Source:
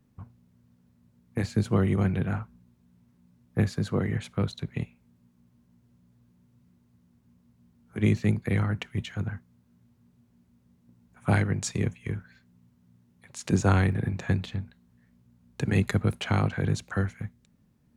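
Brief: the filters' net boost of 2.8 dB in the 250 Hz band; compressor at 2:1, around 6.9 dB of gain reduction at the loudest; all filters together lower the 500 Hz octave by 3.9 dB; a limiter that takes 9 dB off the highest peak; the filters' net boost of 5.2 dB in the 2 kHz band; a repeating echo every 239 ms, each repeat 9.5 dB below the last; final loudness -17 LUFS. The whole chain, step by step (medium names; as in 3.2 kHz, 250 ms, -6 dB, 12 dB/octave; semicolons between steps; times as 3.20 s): peaking EQ 250 Hz +5.5 dB; peaking EQ 500 Hz -8 dB; peaking EQ 2 kHz +7 dB; compression 2:1, threshold -28 dBFS; peak limiter -21 dBFS; feedback delay 239 ms, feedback 33%, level -9.5 dB; trim +16 dB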